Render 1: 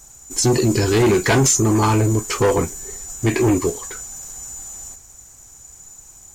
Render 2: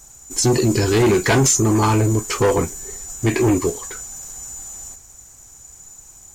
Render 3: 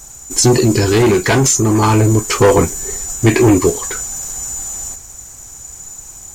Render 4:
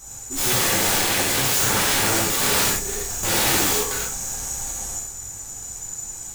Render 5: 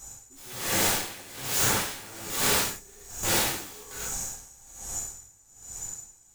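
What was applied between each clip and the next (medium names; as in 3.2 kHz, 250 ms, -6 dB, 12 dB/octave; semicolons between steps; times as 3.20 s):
no audible change
gain riding within 4 dB 0.5 s; trim +5.5 dB
integer overflow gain 14.5 dB; gated-style reverb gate 150 ms flat, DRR -7.5 dB; trim -8.5 dB
logarithmic tremolo 1.2 Hz, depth 21 dB; trim -3 dB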